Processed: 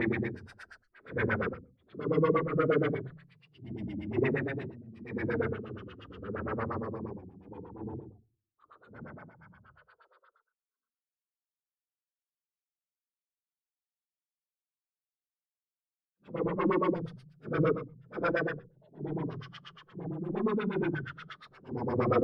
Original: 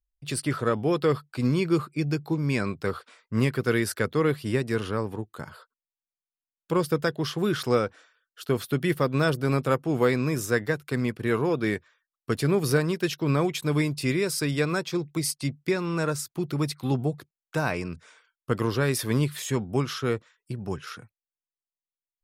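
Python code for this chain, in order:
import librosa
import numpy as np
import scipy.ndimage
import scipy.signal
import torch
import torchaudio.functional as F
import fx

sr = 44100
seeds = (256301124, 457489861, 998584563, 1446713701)

y = fx.cheby_harmonics(x, sr, harmonics=(2, 3, 4, 7), levels_db=(-17, -24, -20, -24), full_scale_db=-9.5)
y = fx.paulstretch(y, sr, seeds[0], factor=5.6, window_s=0.05, from_s=3.79)
y = fx.filter_lfo_lowpass(y, sr, shape='sine', hz=8.5, low_hz=210.0, high_hz=2600.0, q=2.0)
y = y * 10.0 ** (-5.0 / 20.0)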